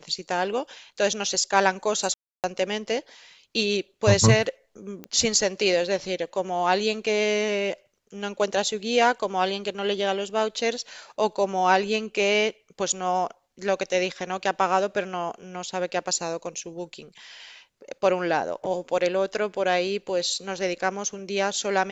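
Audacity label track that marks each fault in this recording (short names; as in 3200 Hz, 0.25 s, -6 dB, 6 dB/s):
2.140000	2.440000	gap 0.298 s
5.040000	5.040000	pop -21 dBFS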